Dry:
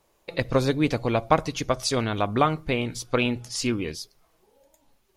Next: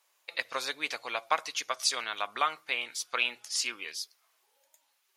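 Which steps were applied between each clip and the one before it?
high-pass 1.3 kHz 12 dB/octave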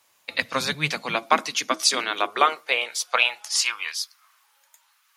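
octave divider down 1 oct, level +3 dB; high-pass sweep 91 Hz -> 1.2 kHz, 0.14–4.09 s; trim +8 dB

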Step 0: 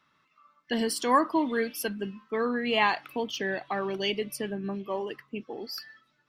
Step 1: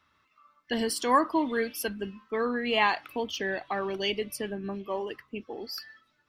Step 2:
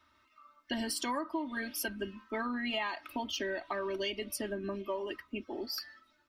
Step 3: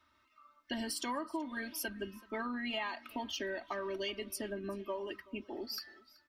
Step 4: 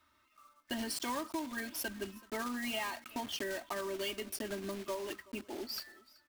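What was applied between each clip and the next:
resonant low shelf 110 Hz +6 dB, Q 3
comb 3.2 ms, depth 100%; compression 8:1, threshold -30 dBFS, peak gain reduction 14.5 dB; trim -2 dB
delay 378 ms -22 dB; trim -3 dB
block-companded coder 3-bit

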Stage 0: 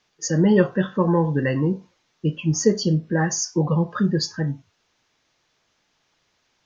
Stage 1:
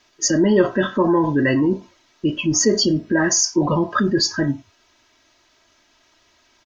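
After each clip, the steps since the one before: comb 3.1 ms, depth 72%; in parallel at -1 dB: compressor with a negative ratio -25 dBFS, ratio -1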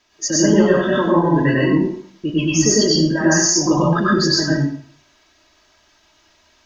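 plate-style reverb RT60 0.55 s, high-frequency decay 0.95×, pre-delay 85 ms, DRR -5 dB; trim -3.5 dB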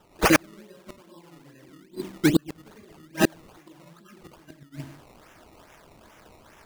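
decimation with a swept rate 19×, swing 100% 2.4 Hz; inverted gate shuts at -11 dBFS, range -39 dB; trim +4 dB

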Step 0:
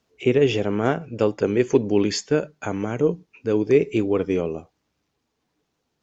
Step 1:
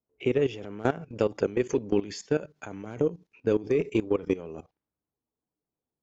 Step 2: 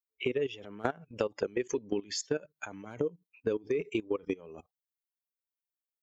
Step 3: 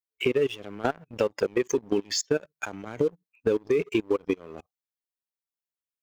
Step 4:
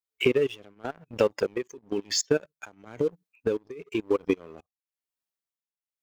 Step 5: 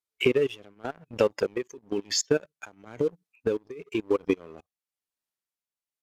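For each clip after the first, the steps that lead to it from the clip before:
transient shaper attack +9 dB, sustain +5 dB; level held to a coarse grid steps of 17 dB; level-controlled noise filter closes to 920 Hz, open at -27.5 dBFS; trim -5 dB
expander on every frequency bin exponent 1.5; compression, threshold -32 dBFS, peak gain reduction 11.5 dB; bass shelf 230 Hz -11.5 dB; trim +7.5 dB
waveshaping leveller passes 2
tremolo triangle 1 Hz, depth 95%; trim +3 dB
resampled via 32 kHz

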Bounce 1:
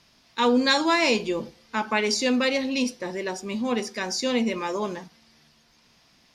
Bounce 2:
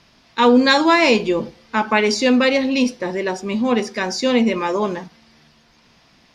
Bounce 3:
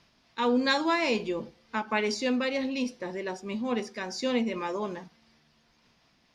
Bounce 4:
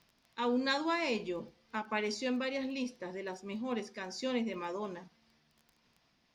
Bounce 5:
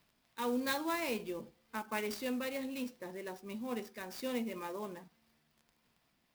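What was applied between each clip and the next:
treble shelf 5.6 kHz -11.5 dB; trim +8 dB
random flutter of the level, depth 55%; trim -9 dB
crackle 10 per s -41 dBFS; trim -6.5 dB
sampling jitter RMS 0.03 ms; trim -3 dB

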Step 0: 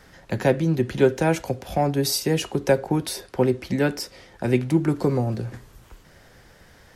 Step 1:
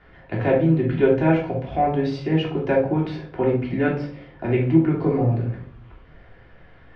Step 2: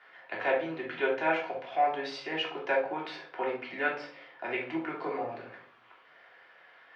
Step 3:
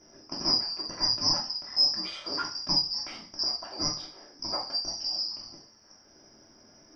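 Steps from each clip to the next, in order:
low-pass 3 kHz 24 dB/octave; simulated room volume 540 m³, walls furnished, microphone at 3.2 m; trim -4.5 dB
high-pass 860 Hz 12 dB/octave
four frequency bands reordered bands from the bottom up 2341; tone controls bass -2 dB, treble +3 dB

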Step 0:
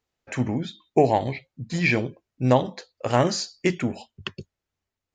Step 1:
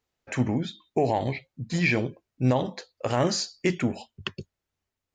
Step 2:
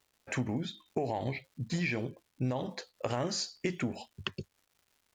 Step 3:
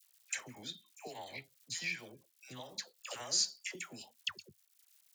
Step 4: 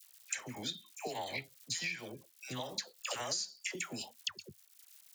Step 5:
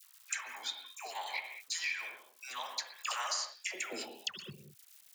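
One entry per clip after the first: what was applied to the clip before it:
peak limiter -13 dBFS, peak gain reduction 8 dB
compression 6:1, threshold -27 dBFS, peak gain reduction 9.5 dB; crackle 300 per s -54 dBFS; trim -2 dB
transient shaper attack +1 dB, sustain -4 dB; pre-emphasis filter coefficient 0.97; phase dispersion lows, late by 106 ms, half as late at 900 Hz; trim +7 dB
compression 16:1, threshold -42 dBFS, peak gain reduction 15.5 dB; trim +8 dB
high-pass sweep 1.1 kHz -> 63 Hz, 3.49–4.86 s; reverberation, pre-delay 47 ms, DRR 5 dB

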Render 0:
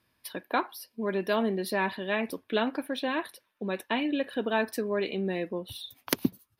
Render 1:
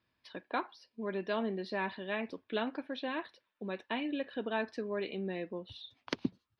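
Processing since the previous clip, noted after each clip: low-pass 4.9 kHz 24 dB/octave; trim -7 dB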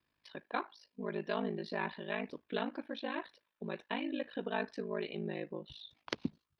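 ring modulator 26 Hz; trim +1 dB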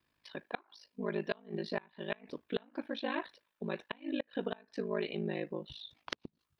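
inverted gate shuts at -24 dBFS, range -27 dB; trim +3 dB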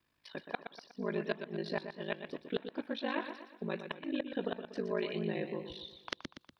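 modulated delay 121 ms, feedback 46%, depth 76 cents, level -9 dB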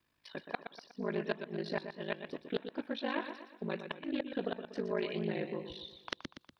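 loudspeaker Doppler distortion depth 0.14 ms

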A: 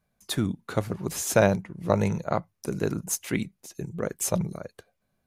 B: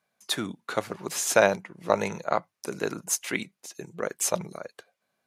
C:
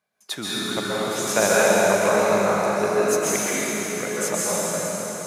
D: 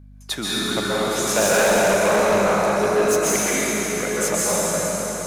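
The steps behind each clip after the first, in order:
frequency weighting A; trim +3 dB
feedback comb 210 Hz, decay 1 s, mix 70%; plate-style reverb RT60 5 s, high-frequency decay 0.85×, pre-delay 115 ms, DRR -8.5 dB; trim +7.5 dB
in parallel at -6 dB: saturation -16.5 dBFS, distortion -13 dB; on the sum: hum 50 Hz, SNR 25 dB; hard clipper -13.5 dBFS, distortion -15 dB

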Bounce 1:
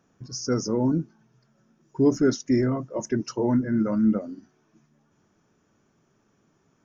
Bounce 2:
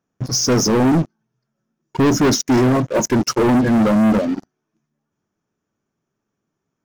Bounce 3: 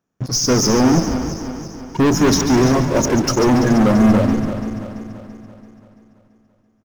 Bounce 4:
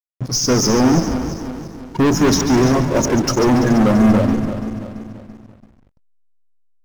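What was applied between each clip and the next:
waveshaping leveller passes 5; trim -1.5 dB
backward echo that repeats 168 ms, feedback 71%, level -10 dB; frequency-shifting echo 141 ms, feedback 45%, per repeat -110 Hz, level -10 dB
hysteresis with a dead band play -34.5 dBFS

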